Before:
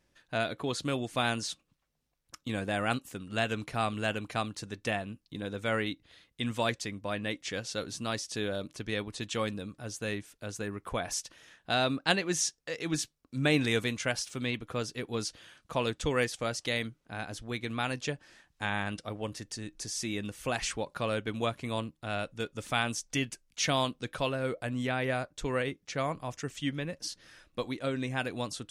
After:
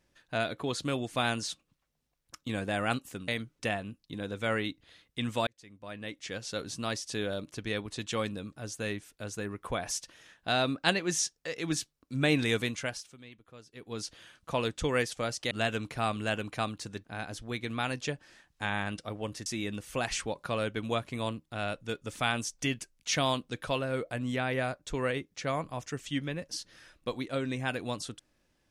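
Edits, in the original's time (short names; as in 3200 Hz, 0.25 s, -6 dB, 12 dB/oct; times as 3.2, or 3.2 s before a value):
3.28–4.81 swap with 16.73–17.04
6.69–7.86 fade in
13.89–15.41 dip -18 dB, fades 0.50 s
19.46–19.97 cut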